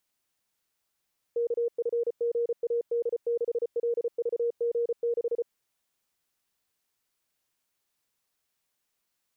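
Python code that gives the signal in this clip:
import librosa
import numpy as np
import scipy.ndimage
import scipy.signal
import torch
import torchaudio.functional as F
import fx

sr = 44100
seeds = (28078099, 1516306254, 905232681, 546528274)

y = fx.morse(sr, text='KFGAD6LVG6', wpm=34, hz=471.0, level_db=-24.0)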